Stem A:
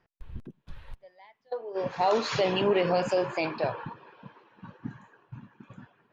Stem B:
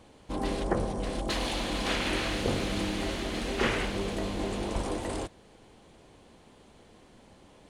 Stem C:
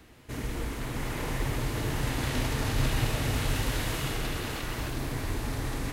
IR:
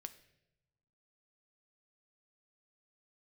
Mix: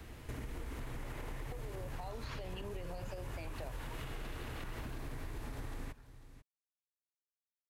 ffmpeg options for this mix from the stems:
-filter_complex "[0:a]dynaudnorm=f=550:g=3:m=14dB,volume=-15dB[a];[2:a]lowshelf=f=140:g=9,bandreject=f=50:t=h:w=6,bandreject=f=100:t=h:w=6,bandreject=f=150:t=h:w=6,bandreject=f=200:t=h:w=6,bandreject=f=250:t=h:w=6,bandreject=f=300:t=h:w=6,acompressor=threshold=-32dB:ratio=2.5,volume=0.5dB,asplit=3[b][c][d];[c]volume=-13.5dB[e];[d]volume=-23.5dB[f];[a][b]amix=inputs=2:normalize=0,acrossover=split=200|4200[g][h][i];[g]acompressor=threshold=-34dB:ratio=4[j];[h]acompressor=threshold=-37dB:ratio=4[k];[i]acompressor=threshold=-54dB:ratio=4[l];[j][k][l]amix=inputs=3:normalize=0,alimiter=level_in=4dB:limit=-24dB:level=0:latency=1:release=154,volume=-4dB,volume=0dB[m];[3:a]atrim=start_sample=2205[n];[e][n]afir=irnorm=-1:irlink=0[o];[f]aecho=0:1:494:1[p];[m][o][p]amix=inputs=3:normalize=0,acompressor=threshold=-41dB:ratio=3"

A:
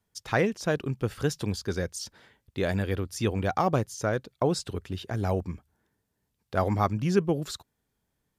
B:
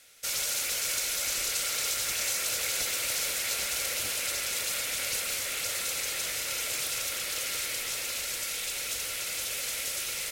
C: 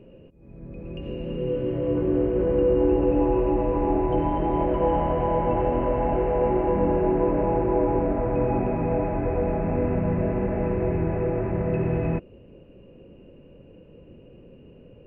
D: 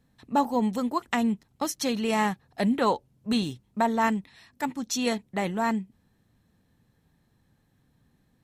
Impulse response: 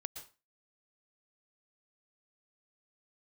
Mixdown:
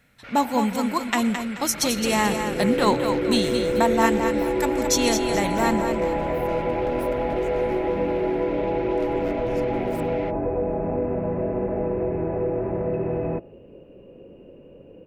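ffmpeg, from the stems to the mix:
-filter_complex "[0:a]acompressor=threshold=-25dB:ratio=6,aeval=exprs='abs(val(0))':c=same,adelay=2450,volume=-13.5dB,asplit=2[a][b];[b]volume=-23dB[c];[1:a]lowpass=f=2.1k:w=0.5412,lowpass=f=2.1k:w=1.3066,volume=-0.5dB[d];[2:a]equalizer=f=510:t=o:w=2.6:g=9.5,acrossover=split=380|1300[e][f][g];[e]acompressor=threshold=-22dB:ratio=4[h];[f]acompressor=threshold=-22dB:ratio=4[i];[g]acompressor=threshold=-48dB:ratio=4[j];[h][i][j]amix=inputs=3:normalize=0,adelay=1200,volume=-5.5dB,asplit=2[k][l];[l]volume=-15dB[m];[3:a]volume=-0.5dB,asplit=3[n][o][p];[o]volume=-6dB[q];[p]volume=-4.5dB[r];[4:a]atrim=start_sample=2205[s];[c][m][q]amix=inputs=3:normalize=0[t];[t][s]afir=irnorm=-1:irlink=0[u];[r]aecho=0:1:216|432|648|864|1080:1|0.33|0.109|0.0359|0.0119[v];[a][d][k][n][u][v]amix=inputs=6:normalize=0,highshelf=f=3.4k:g=8.5"

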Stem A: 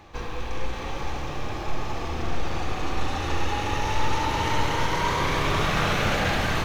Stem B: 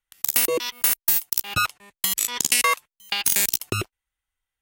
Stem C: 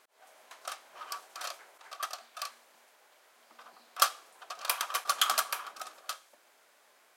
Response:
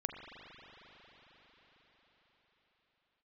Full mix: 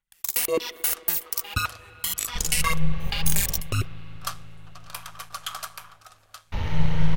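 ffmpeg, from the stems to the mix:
-filter_complex "[0:a]equalizer=f=250:t=o:w=1:g=-11,equalizer=f=500:t=o:w=1:g=4,equalizer=f=1k:t=o:w=1:g=-7,equalizer=f=8k:t=o:w=1:g=-12,adelay=2200,volume=-8dB,asplit=3[a][b][c];[a]atrim=end=3.6,asetpts=PTS-STARTPTS,afade=t=out:st=3.596:d=0.004:c=hsin[d];[b]atrim=start=3.6:end=6.52,asetpts=PTS-STARTPTS,volume=0[e];[c]atrim=start=6.52,asetpts=PTS-STARTPTS,afade=t=in:d=0.004:c=hsin[f];[d][e][f]concat=n=3:v=0:a=1,asplit=2[g][h];[h]volume=-5dB[i];[1:a]aphaser=in_gain=1:out_gain=1:delay=2.8:decay=0.58:speed=1.8:type=sinusoidal,volume=-6dB,asplit=2[j][k];[k]volume=-12dB[l];[2:a]adelay=250,volume=-4dB[m];[3:a]atrim=start_sample=2205[n];[i][l]amix=inputs=2:normalize=0[o];[o][n]afir=irnorm=-1:irlink=0[p];[g][j][m][p]amix=inputs=4:normalize=0,asubboost=boost=5:cutoff=110,tremolo=f=160:d=0.462"

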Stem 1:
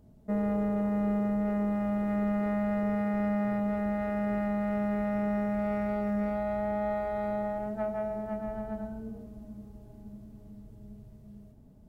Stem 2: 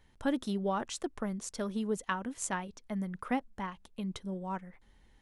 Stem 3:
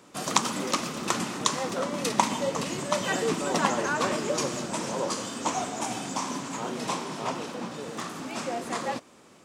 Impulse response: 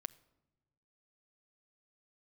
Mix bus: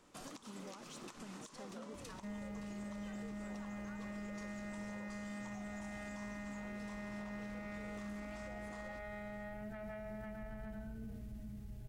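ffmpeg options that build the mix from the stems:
-filter_complex "[0:a]equalizer=f=250:t=o:w=1:g=-7,equalizer=f=500:t=o:w=1:g=-12,equalizer=f=1k:t=o:w=1:g=-10,equalizer=f=2k:t=o:w=1:g=6,adelay=1950,volume=1.5dB,asplit=2[a][b];[b]volume=-6.5dB[c];[1:a]acompressor=threshold=-34dB:ratio=6,asoftclip=type=tanh:threshold=-31.5dB,volume=-12.5dB[d];[2:a]acompressor=threshold=-36dB:ratio=6,volume=-12dB[e];[a][d]amix=inputs=2:normalize=0,asoftclip=type=tanh:threshold=-33.5dB,alimiter=level_in=20dB:limit=-24dB:level=0:latency=1:release=15,volume=-20dB,volume=0dB[f];[3:a]atrim=start_sample=2205[g];[c][g]afir=irnorm=-1:irlink=0[h];[e][f][h]amix=inputs=3:normalize=0,alimiter=level_in=15dB:limit=-24dB:level=0:latency=1:release=102,volume=-15dB"

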